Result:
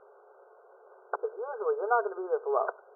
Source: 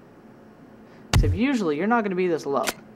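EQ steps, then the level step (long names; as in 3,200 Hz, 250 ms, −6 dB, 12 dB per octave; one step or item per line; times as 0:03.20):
linear-phase brick-wall band-pass 380–1,600 Hz
high-frequency loss of the air 400 metres
−1.5 dB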